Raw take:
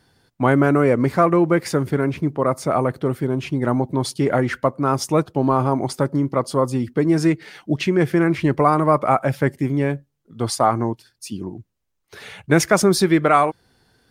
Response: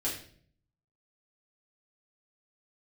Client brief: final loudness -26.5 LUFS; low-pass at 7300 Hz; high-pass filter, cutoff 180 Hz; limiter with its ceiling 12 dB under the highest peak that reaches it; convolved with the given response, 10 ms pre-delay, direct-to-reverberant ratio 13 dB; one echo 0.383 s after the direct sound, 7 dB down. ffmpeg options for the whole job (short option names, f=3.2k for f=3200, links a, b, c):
-filter_complex "[0:a]highpass=180,lowpass=7.3k,alimiter=limit=-12.5dB:level=0:latency=1,aecho=1:1:383:0.447,asplit=2[a][b];[1:a]atrim=start_sample=2205,adelay=10[c];[b][c]afir=irnorm=-1:irlink=0,volume=-18dB[d];[a][d]amix=inputs=2:normalize=0,volume=-3dB"